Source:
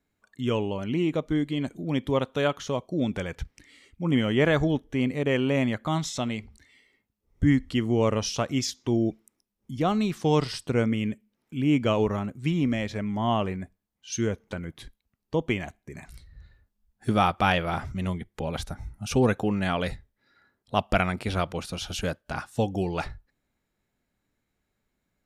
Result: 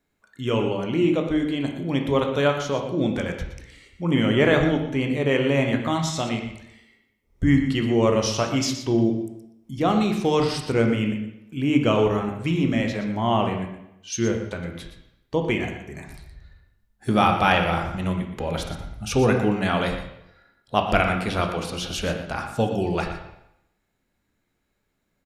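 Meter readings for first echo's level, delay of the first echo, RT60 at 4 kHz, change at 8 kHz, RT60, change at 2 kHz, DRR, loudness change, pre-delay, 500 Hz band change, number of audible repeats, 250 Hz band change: -11.0 dB, 0.119 s, 0.75 s, +3.5 dB, 0.85 s, +5.0 dB, 3.0 dB, +4.0 dB, 6 ms, +4.5 dB, 1, +3.5 dB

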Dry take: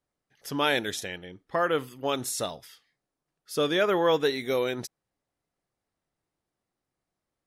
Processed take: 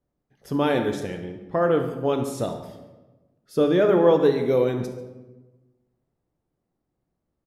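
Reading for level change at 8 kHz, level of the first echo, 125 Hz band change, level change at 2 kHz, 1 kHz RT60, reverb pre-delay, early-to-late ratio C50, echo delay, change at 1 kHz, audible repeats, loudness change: n/a, -14.5 dB, +10.5 dB, -3.5 dB, 1.1 s, 10 ms, 7.0 dB, 70 ms, +1.5 dB, 2, +5.0 dB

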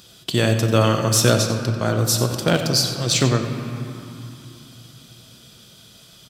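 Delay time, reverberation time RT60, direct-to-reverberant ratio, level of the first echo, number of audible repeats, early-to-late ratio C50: 92 ms, 2.9 s, 4.0 dB, -13.0 dB, 1, 5.5 dB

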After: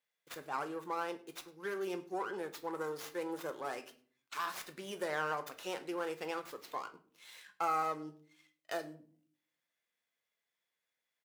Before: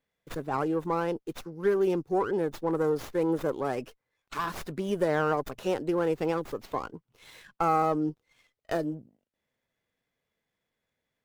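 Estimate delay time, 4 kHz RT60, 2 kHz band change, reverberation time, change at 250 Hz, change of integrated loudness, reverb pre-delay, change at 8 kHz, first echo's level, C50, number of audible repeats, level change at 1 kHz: 0.103 s, 0.30 s, -4.0 dB, 0.50 s, -14.5 dB, -10.0 dB, 6 ms, -1.5 dB, -23.5 dB, 15.0 dB, 1, -7.5 dB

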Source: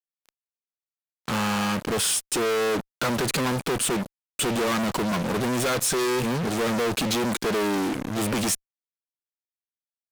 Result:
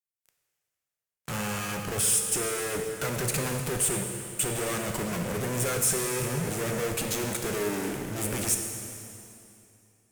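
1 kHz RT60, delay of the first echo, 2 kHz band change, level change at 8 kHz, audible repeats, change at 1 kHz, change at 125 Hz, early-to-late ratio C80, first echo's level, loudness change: 2.7 s, none, -5.0 dB, +1.5 dB, none, -8.0 dB, -1.0 dB, 5.5 dB, none, -3.0 dB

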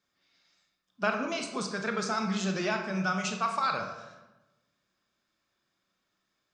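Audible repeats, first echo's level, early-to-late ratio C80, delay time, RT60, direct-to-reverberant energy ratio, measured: none, none, 8.5 dB, none, 1.0 s, 3.5 dB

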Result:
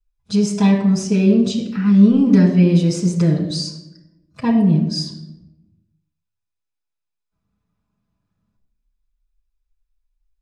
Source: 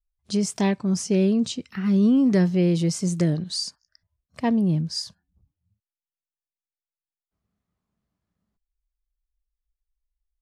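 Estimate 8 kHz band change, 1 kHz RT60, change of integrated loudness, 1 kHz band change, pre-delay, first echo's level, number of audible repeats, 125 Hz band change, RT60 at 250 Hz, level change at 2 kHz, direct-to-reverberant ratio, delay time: +1.0 dB, 0.80 s, +7.0 dB, +4.0 dB, 4 ms, none, none, +7.5 dB, 1.2 s, +4.0 dB, -10.0 dB, none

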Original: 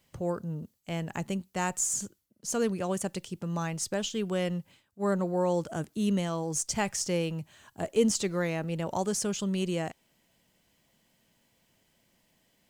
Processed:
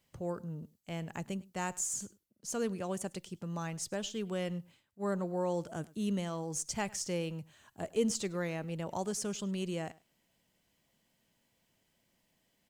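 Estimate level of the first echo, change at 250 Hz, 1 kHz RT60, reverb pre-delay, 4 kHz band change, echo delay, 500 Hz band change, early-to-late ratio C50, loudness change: -22.5 dB, -6.0 dB, none, none, -6.0 dB, 0.103 s, -6.0 dB, none, -6.0 dB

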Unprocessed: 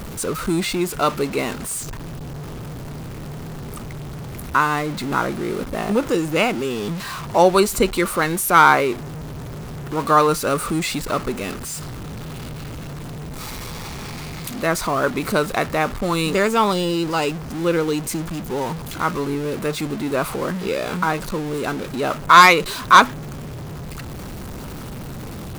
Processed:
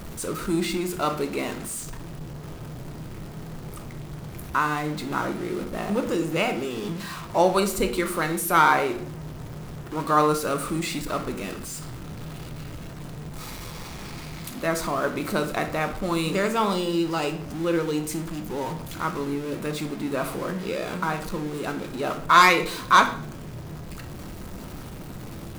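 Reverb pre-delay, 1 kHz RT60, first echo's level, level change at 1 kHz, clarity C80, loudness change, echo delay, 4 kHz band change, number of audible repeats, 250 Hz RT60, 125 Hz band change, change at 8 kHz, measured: 3 ms, 0.50 s, none, -5.5 dB, 15.0 dB, -5.5 dB, none, -5.5 dB, none, 1.0 s, -5.0 dB, -6.0 dB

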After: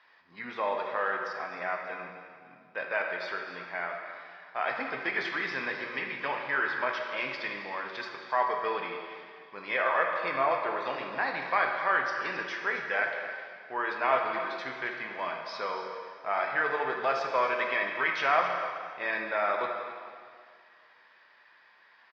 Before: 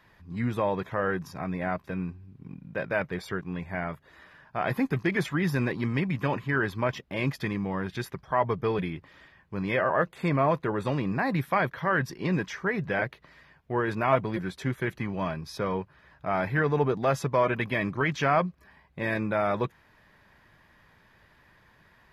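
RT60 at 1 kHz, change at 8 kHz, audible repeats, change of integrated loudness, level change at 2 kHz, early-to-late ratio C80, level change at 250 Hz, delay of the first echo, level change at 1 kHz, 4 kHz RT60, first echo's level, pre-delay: 2.0 s, n/a, 1, -2.0 dB, +2.0 dB, 4.0 dB, -15.0 dB, 0.267 s, +1.0 dB, 1.9 s, -12.5 dB, 7 ms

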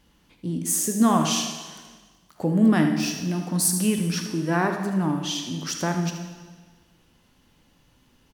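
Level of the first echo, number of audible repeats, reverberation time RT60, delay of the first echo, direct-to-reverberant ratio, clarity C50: -10.5 dB, 1, 1.4 s, 77 ms, 4.0 dB, 5.0 dB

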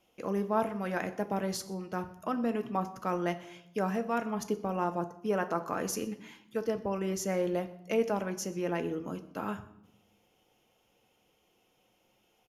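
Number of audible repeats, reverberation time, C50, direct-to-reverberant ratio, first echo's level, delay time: 1, 0.80 s, 14.5 dB, 8.5 dB, -24.0 dB, 0.124 s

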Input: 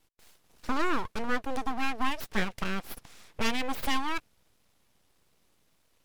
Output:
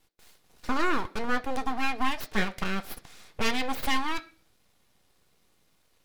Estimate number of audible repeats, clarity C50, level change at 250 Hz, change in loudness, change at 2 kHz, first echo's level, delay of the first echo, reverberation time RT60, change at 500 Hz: none, 19.0 dB, +1.5 dB, +2.0 dB, +2.5 dB, none, none, 0.40 s, +2.0 dB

